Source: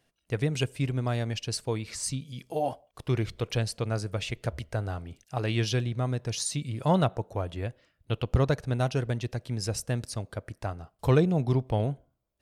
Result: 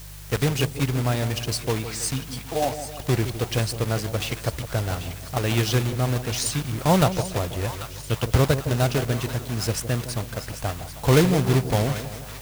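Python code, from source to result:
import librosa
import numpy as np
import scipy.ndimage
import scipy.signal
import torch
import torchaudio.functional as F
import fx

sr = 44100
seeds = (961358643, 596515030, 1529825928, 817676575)

p1 = fx.block_float(x, sr, bits=3)
p2 = fx.echo_split(p1, sr, split_hz=910.0, low_ms=161, high_ms=790, feedback_pct=52, wet_db=-11.0)
p3 = fx.quant_dither(p2, sr, seeds[0], bits=6, dither='triangular')
p4 = p2 + F.gain(torch.from_numpy(p3), -11.5).numpy()
p5 = fx.dmg_buzz(p4, sr, base_hz=50.0, harmonics=3, level_db=-44.0, tilt_db=-4, odd_only=False)
y = F.gain(torch.from_numpy(p5), 2.5).numpy()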